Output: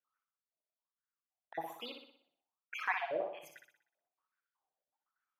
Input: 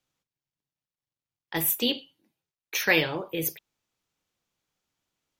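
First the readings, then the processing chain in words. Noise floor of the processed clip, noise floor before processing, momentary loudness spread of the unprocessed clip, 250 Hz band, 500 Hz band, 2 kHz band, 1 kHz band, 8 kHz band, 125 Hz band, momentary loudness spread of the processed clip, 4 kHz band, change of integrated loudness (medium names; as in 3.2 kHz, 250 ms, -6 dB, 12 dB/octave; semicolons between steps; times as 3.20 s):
under -85 dBFS, under -85 dBFS, 10 LU, -22.5 dB, -9.5 dB, -12.5 dB, -3.0 dB, -29.0 dB, -28.5 dB, 16 LU, -20.0 dB, -13.0 dB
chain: random holes in the spectrogram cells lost 40%; wah-wah 1.2 Hz 620–1500 Hz, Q 10; flutter echo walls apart 10.5 m, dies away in 0.59 s; trim +9.5 dB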